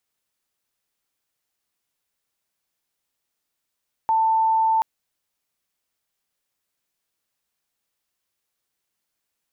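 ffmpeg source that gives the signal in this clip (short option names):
-f lavfi -i "aevalsrc='0.158*sin(2*PI*890*t)':d=0.73:s=44100"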